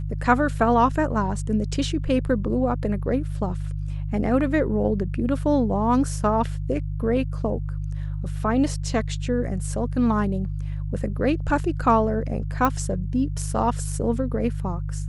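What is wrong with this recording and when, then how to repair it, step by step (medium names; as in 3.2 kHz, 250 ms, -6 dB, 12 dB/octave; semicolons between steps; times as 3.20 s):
hum 50 Hz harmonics 3 -28 dBFS
12.65 s: pop -9 dBFS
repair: de-click; de-hum 50 Hz, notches 3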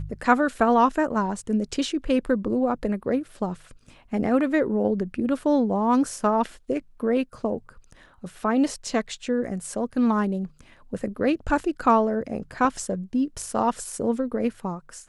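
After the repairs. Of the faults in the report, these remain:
nothing left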